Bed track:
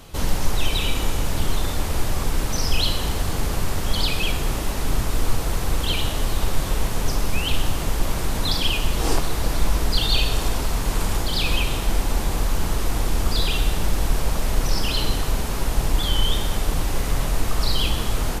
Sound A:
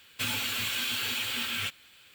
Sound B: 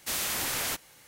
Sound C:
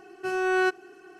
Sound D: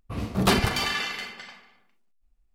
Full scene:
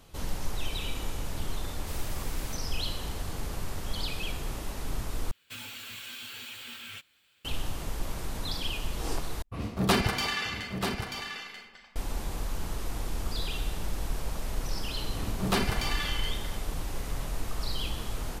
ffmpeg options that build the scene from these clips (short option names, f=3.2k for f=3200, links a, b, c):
-filter_complex "[4:a]asplit=2[a][b];[0:a]volume=-11.5dB[c];[a]aecho=1:1:936:0.447[d];[c]asplit=3[e][f][g];[e]atrim=end=5.314[h];[1:a]atrim=end=2.14,asetpts=PTS-STARTPTS,volume=-11dB[i];[f]atrim=start=7.446:end=9.424[j];[d]atrim=end=2.54,asetpts=PTS-STARTPTS,volume=-3.5dB[k];[g]atrim=start=11.956[l];[2:a]atrim=end=1.07,asetpts=PTS-STARTPTS,volume=-15dB,afade=t=in:d=0.004:c=hsin,afade=t=out:st=1.066:d=0.004:c=hsin,adelay=1800[m];[b]atrim=end=2.54,asetpts=PTS-STARTPTS,volume=-6.5dB,afade=t=in:d=0.004:c=hsin,afade=t=out:st=2.536:d=0.004:c=hsin,adelay=15050[n];[h][i]acrossfade=d=0.004:c1=hsin:c2=hsin[o];[o][j]acrossfade=d=0.004:c1=hsin:c2=hsin[p];[p][k]acrossfade=d=0.004:c1=hsin:c2=hsin[q];[q][l]acrossfade=d=0.004:c1=hsin:c2=hsin[r];[r][m][n]amix=inputs=3:normalize=0"